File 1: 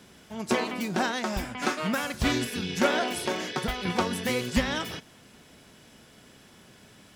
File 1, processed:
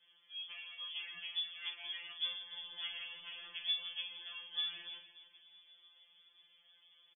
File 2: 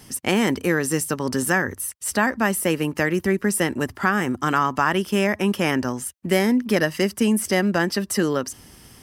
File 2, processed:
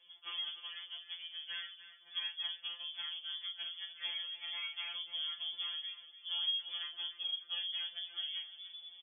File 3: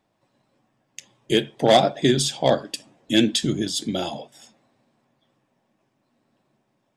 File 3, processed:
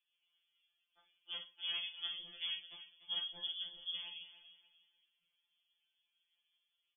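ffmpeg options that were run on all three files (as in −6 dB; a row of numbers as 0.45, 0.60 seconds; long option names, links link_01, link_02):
-filter_complex "[0:a]highshelf=frequency=2000:gain=-12,aeval=exprs='(tanh(6.31*val(0)+0.7)-tanh(0.7))/6.31':channel_layout=same,acrossover=split=770|1200[link_01][link_02][link_03];[link_01]alimiter=limit=-19.5dB:level=0:latency=1[link_04];[link_04][link_02][link_03]amix=inputs=3:normalize=0,acompressor=threshold=-35dB:ratio=2.5,asubboost=boost=5:cutoff=110,tremolo=f=240:d=1,asplit=2[link_05][link_06];[link_06]adelay=41,volume=-9dB[link_07];[link_05][link_07]amix=inputs=2:normalize=0,asplit=2[link_08][link_09];[link_09]aecho=0:1:294|588|882:0.211|0.0655|0.0203[link_10];[link_08][link_10]amix=inputs=2:normalize=0,lowpass=frequency=3000:width_type=q:width=0.5098,lowpass=frequency=3000:width_type=q:width=0.6013,lowpass=frequency=3000:width_type=q:width=0.9,lowpass=frequency=3000:width_type=q:width=2.563,afreqshift=-3500,afftfilt=real='re*2.83*eq(mod(b,8),0)':imag='im*2.83*eq(mod(b,8),0)':win_size=2048:overlap=0.75,volume=-3dB"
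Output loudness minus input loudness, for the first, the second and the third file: −12.5, −17.0, −20.0 LU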